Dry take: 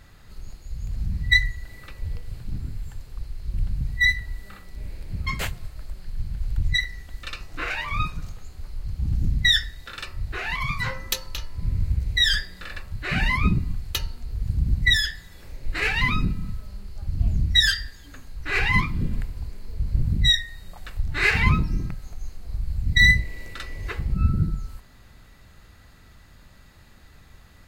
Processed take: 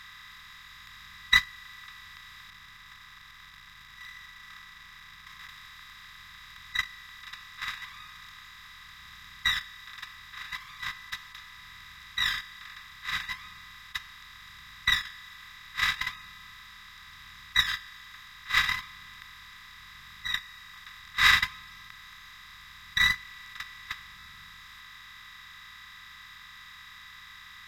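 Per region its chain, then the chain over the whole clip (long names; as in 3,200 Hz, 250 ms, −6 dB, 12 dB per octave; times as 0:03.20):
0:02.50–0:05.49: running median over 15 samples + downward compressor 4 to 1, threshold −31 dBFS + comb filter 6.1 ms, depth 39%
whole clip: compressor on every frequency bin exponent 0.2; low shelf with overshoot 790 Hz −12 dB, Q 3; noise gate −6 dBFS, range −33 dB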